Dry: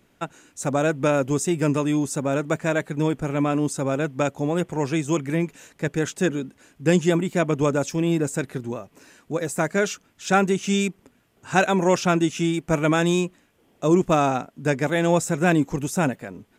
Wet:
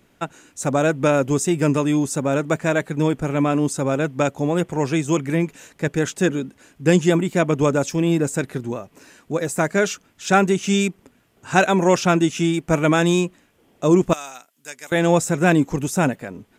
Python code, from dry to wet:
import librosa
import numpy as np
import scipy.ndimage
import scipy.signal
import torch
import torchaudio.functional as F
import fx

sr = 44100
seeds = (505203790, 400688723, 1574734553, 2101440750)

y = fx.differentiator(x, sr, at=(14.13, 14.92))
y = y * librosa.db_to_amplitude(3.0)